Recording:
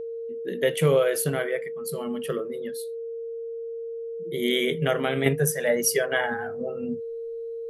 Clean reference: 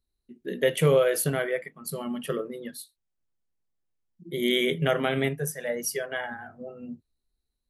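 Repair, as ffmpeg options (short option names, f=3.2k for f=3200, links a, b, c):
-af "bandreject=f=460:w=30,asetnsamples=n=441:p=0,asendcmd='5.26 volume volume -7dB',volume=0dB"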